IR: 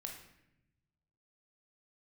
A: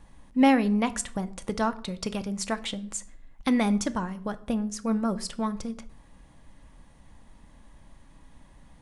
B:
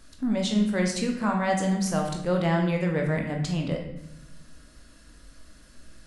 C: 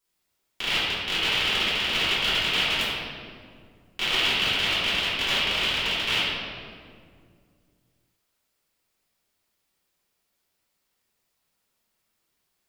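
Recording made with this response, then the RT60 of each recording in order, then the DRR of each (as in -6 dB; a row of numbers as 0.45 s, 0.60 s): B; 0.60 s, 0.85 s, 2.1 s; 10.0 dB, 1.0 dB, -13.5 dB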